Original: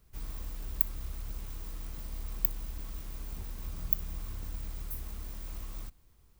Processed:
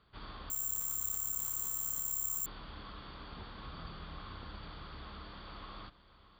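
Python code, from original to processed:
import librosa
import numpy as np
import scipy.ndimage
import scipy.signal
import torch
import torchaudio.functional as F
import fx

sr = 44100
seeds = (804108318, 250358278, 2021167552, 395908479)

p1 = scipy.signal.sosfilt(scipy.signal.cheby1(6, 9, 4700.0, 'lowpass', fs=sr, output='sos'), x)
p2 = p1 + 10.0 ** (-15.0 / 20.0) * np.pad(p1, (int(625 * sr / 1000.0), 0))[:len(p1)]
p3 = fx.resample_bad(p2, sr, factor=6, down='filtered', up='zero_stuff', at=(0.5, 2.46))
p4 = fx.highpass(p3, sr, hz=170.0, slope=6)
p5 = fx.over_compress(p4, sr, threshold_db=-47.0, ratio=-1.0)
y = p4 + F.gain(torch.from_numpy(p5), 1.5).numpy()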